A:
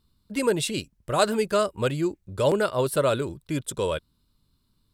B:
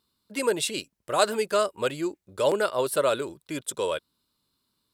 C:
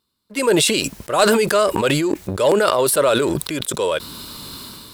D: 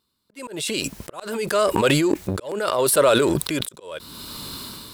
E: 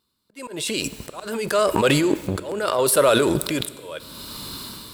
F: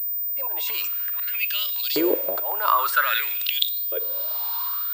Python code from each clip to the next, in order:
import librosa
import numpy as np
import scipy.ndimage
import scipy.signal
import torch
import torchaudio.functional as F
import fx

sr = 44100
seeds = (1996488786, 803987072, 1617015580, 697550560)

y1 = fx.highpass(x, sr, hz=150.0, slope=6)
y1 = fx.bass_treble(y1, sr, bass_db=-10, treble_db=1)
y2 = fx.leveller(y1, sr, passes=1)
y2 = fx.sustainer(y2, sr, db_per_s=22.0)
y2 = y2 * 10.0 ** (3.0 / 20.0)
y3 = fx.auto_swell(y2, sr, attack_ms=579.0)
y4 = fx.rev_plate(y3, sr, seeds[0], rt60_s=1.6, hf_ratio=1.0, predelay_ms=0, drr_db=14.0)
y5 = fx.filter_lfo_highpass(y4, sr, shape='saw_up', hz=0.51, low_hz=400.0, high_hz=5000.0, q=7.4)
y5 = fx.pwm(y5, sr, carrier_hz=15000.0)
y5 = y5 * 10.0 ** (-5.0 / 20.0)